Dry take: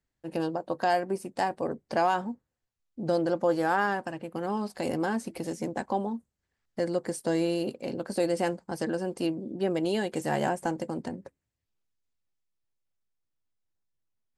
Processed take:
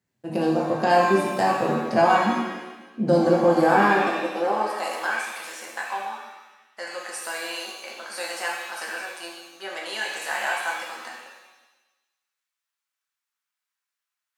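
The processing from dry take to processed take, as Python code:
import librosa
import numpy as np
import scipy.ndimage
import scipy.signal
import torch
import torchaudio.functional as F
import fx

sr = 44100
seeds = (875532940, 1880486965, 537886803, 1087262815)

y = fx.robotise(x, sr, hz=170.0, at=(9.15, 9.6))
y = fx.filter_sweep_highpass(y, sr, from_hz=130.0, to_hz=1300.0, start_s=3.46, end_s=5.11, q=1.7)
y = fx.rev_shimmer(y, sr, seeds[0], rt60_s=1.1, semitones=7, shimmer_db=-8, drr_db=-2.5)
y = y * 10.0 ** (2.5 / 20.0)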